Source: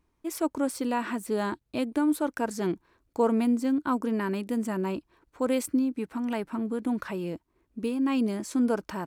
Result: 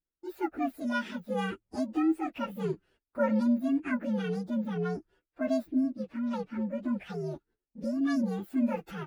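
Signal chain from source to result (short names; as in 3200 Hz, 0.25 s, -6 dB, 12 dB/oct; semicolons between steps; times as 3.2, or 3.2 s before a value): inharmonic rescaling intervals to 130%; high shelf 3600 Hz -6.5 dB, from 4.5 s -11.5 dB, from 7.1 s -6 dB; gate -60 dBFS, range -19 dB; gain -1 dB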